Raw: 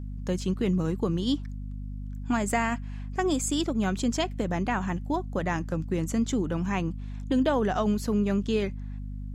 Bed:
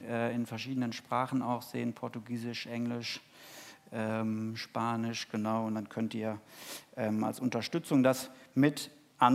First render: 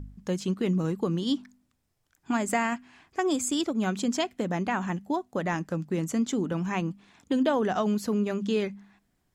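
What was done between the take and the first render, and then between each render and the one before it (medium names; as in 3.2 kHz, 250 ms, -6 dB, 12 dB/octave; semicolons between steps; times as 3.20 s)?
de-hum 50 Hz, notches 5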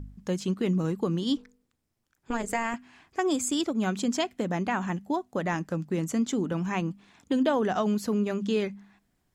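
1.37–2.74 s: AM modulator 230 Hz, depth 80%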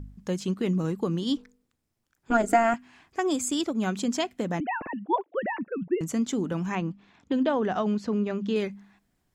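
2.31–2.74 s: small resonant body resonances 310/670/1400 Hz, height 16 dB; 4.60–6.01 s: formants replaced by sine waves; 6.75–8.56 s: distance through air 120 m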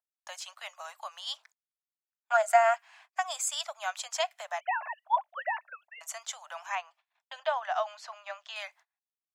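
steep high-pass 620 Hz 96 dB/octave; gate -57 dBFS, range -31 dB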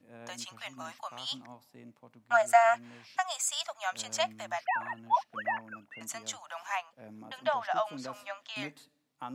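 add bed -17 dB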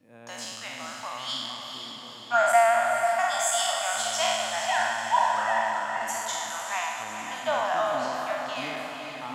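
spectral sustain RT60 1.55 s; echo that smears into a reverb 462 ms, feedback 54%, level -6 dB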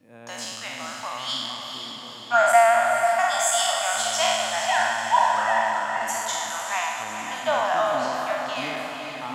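trim +3.5 dB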